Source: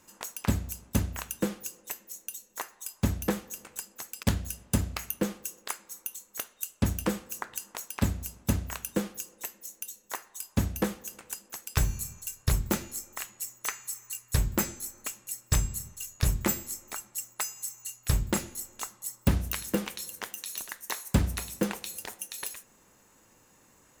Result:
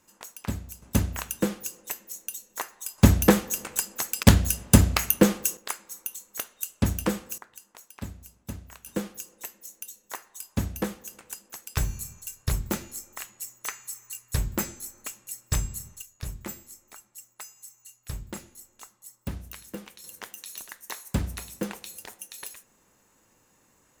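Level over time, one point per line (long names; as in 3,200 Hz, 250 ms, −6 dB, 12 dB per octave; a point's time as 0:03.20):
−4.5 dB
from 0:00.82 +3.5 dB
from 0:02.98 +11 dB
from 0:05.57 +2.5 dB
from 0:07.38 −10.5 dB
from 0:08.86 −1 dB
from 0:16.02 −10 dB
from 0:20.04 −3 dB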